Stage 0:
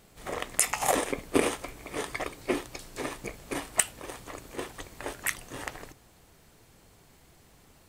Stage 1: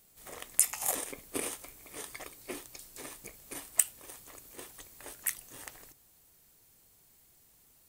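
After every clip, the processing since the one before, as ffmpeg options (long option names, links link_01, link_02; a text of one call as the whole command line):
ffmpeg -i in.wav -af "aemphasis=mode=production:type=75fm,volume=-13dB" out.wav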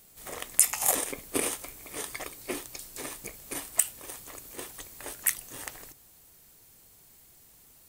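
ffmpeg -i in.wav -af "alimiter=level_in=6.5dB:limit=-1dB:release=50:level=0:latency=1" out.wav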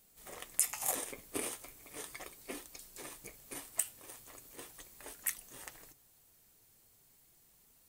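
ffmpeg -i in.wav -af "flanger=delay=3.7:depth=6.1:regen=-52:speed=0.38:shape=triangular,volume=-5dB" out.wav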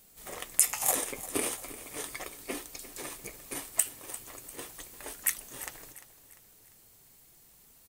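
ffmpeg -i in.wav -af "aecho=1:1:347|694|1041|1388:0.168|0.0755|0.034|0.0153,volume=7dB" out.wav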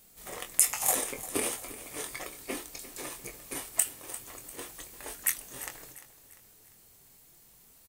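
ffmpeg -i in.wav -filter_complex "[0:a]asplit=2[link_01][link_02];[link_02]adelay=23,volume=-8dB[link_03];[link_01][link_03]amix=inputs=2:normalize=0" out.wav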